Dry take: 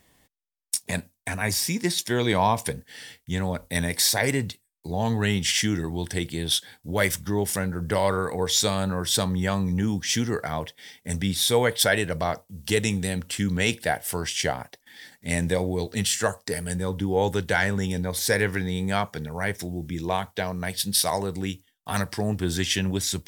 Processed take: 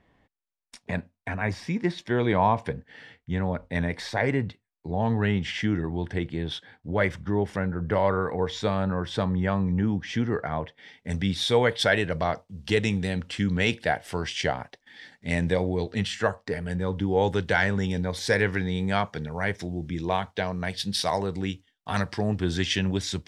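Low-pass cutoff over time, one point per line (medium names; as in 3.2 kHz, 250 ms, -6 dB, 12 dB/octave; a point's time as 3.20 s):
10.67 s 2 kHz
11.19 s 3.9 kHz
15.55 s 3.9 kHz
16.60 s 2.4 kHz
17.15 s 4.5 kHz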